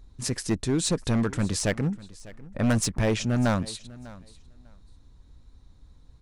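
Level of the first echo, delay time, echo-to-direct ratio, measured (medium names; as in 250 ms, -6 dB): -20.0 dB, 598 ms, -20.0 dB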